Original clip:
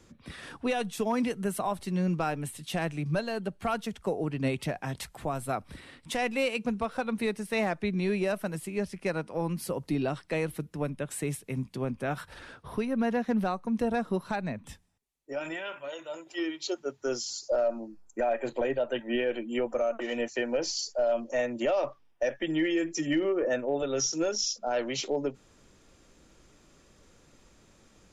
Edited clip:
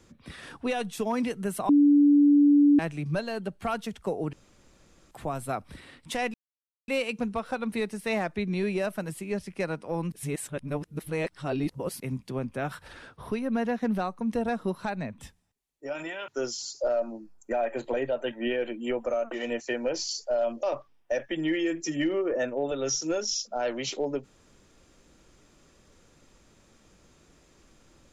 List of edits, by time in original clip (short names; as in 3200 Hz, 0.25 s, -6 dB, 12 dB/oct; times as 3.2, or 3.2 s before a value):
1.69–2.79 bleep 289 Hz -15 dBFS
4.33–5.11 room tone
6.34 insert silence 0.54 s
9.58–11.46 reverse
15.74–16.96 cut
21.31–21.74 cut